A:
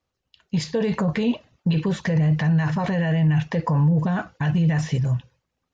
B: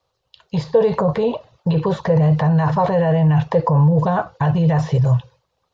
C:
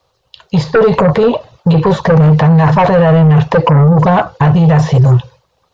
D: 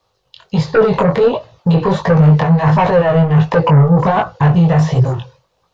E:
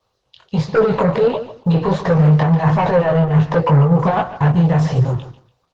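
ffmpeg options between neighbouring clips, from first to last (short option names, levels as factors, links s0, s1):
-filter_complex "[0:a]equalizer=f=125:t=o:w=1:g=6,equalizer=f=250:t=o:w=1:g=-10,equalizer=f=500:t=o:w=1:g=10,equalizer=f=1000:t=o:w=1:g=9,equalizer=f=2000:t=o:w=1:g=-3,equalizer=f=4000:t=o:w=1:g=9,acrossover=split=530|1500[s0][s1][s2];[s1]alimiter=limit=0.211:level=0:latency=1:release=440[s3];[s2]acompressor=threshold=0.00708:ratio=5[s4];[s0][s3][s4]amix=inputs=3:normalize=0,volume=1.33"
-af "aeval=exprs='0.708*sin(PI/2*2.51*val(0)/0.708)':c=same,volume=0.891"
-af "flanger=delay=17.5:depth=5.7:speed=1.4"
-af "aecho=1:1:145|290:0.224|0.047,volume=0.708" -ar 48000 -c:a libopus -b:a 16k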